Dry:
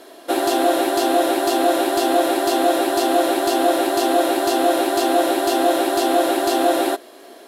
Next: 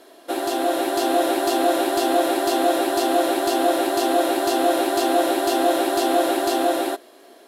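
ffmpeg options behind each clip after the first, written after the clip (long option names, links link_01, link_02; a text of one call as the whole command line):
ffmpeg -i in.wav -af "dynaudnorm=framelen=100:gausssize=17:maxgain=7dB,volume=-5.5dB" out.wav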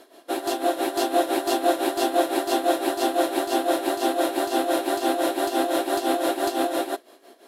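ffmpeg -i in.wav -af "tremolo=f=5.9:d=0.72" out.wav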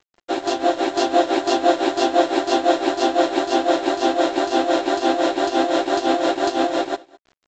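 ffmpeg -i in.wav -af "aresample=16000,aeval=exprs='sgn(val(0))*max(abs(val(0))-0.00668,0)':channel_layout=same,aresample=44100,aecho=1:1:209:0.0668,volume=5dB" out.wav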